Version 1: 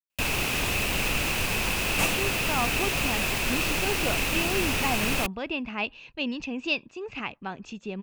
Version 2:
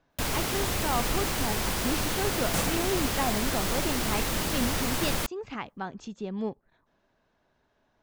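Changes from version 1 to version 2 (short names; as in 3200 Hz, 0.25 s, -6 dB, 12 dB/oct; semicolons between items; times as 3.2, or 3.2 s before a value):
speech: entry -1.65 s; second sound: entry +0.55 s; master: add bell 2600 Hz -15 dB 0.31 oct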